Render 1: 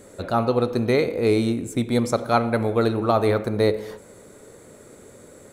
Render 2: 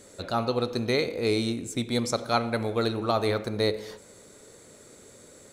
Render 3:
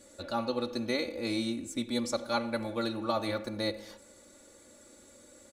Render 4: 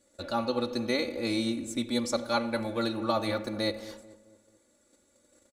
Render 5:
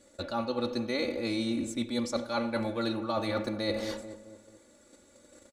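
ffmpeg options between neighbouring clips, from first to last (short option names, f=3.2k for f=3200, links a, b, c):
-af "equalizer=f=4.9k:t=o:w=1.9:g=10.5,volume=-6.5dB"
-af "aecho=1:1:3.5:0.89,volume=-7.5dB"
-filter_complex "[0:a]agate=range=-14dB:threshold=-53dB:ratio=16:detection=peak,asplit=2[a][b];[b]adelay=218,lowpass=f=1.3k:p=1,volume=-15dB,asplit=2[c][d];[d]adelay=218,lowpass=f=1.3k:p=1,volume=0.48,asplit=2[e][f];[f]adelay=218,lowpass=f=1.3k:p=1,volume=0.48,asplit=2[g][h];[h]adelay=218,lowpass=f=1.3k:p=1,volume=0.48[i];[a][c][e][g][i]amix=inputs=5:normalize=0,volume=2.5dB"
-af "highshelf=f=9.9k:g=-9.5,areverse,acompressor=threshold=-37dB:ratio=6,areverse,volume=8.5dB"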